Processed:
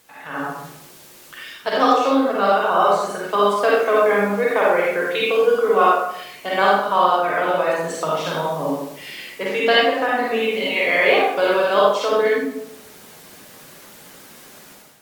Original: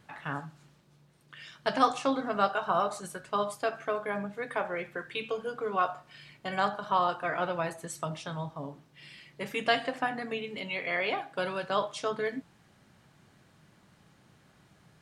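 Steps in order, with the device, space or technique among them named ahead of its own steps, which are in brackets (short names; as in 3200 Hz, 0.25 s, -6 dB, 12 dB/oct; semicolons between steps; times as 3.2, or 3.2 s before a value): filmed off a television (BPF 260–6700 Hz; bell 490 Hz +6.5 dB 0.3 oct; reverb RT60 0.75 s, pre-delay 41 ms, DRR -5 dB; white noise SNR 29 dB; AGC gain up to 12 dB; gain -1 dB; AAC 96 kbps 44100 Hz)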